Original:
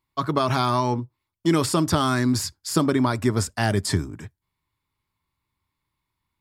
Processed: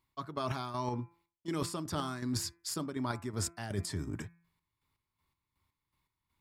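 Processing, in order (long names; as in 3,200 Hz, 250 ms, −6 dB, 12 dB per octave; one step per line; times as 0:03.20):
square-wave tremolo 2.7 Hz, depth 60%, duty 40%
hum removal 169.6 Hz, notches 15
reversed playback
downward compressor 6 to 1, threshold −33 dBFS, peak gain reduction 16 dB
reversed playback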